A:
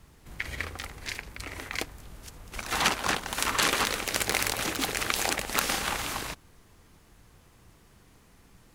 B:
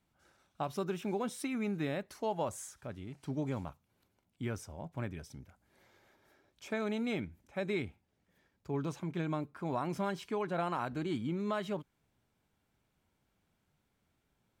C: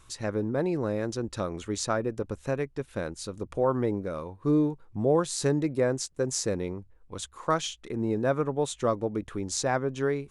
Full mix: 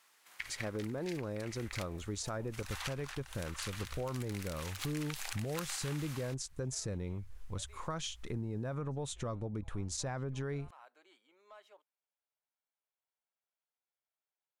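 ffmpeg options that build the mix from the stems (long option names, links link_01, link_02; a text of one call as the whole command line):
ffmpeg -i stem1.wav -i stem2.wav -i stem3.wav -filter_complex "[0:a]highpass=1100,volume=3dB,afade=type=out:start_time=2.61:duration=0.34:silence=0.334965,afade=type=in:start_time=4.33:duration=0.56:silence=0.473151[link_01];[1:a]highpass=frequency=530:width=0.5412,highpass=frequency=530:width=1.3066,asoftclip=type=tanh:threshold=-26dB,volume=-18dB[link_02];[2:a]asubboost=boost=4:cutoff=150,alimiter=limit=-21dB:level=0:latency=1:release=30,adelay=400,volume=0dB[link_03];[link_01][link_02][link_03]amix=inputs=3:normalize=0,acompressor=threshold=-39dB:ratio=2.5" out.wav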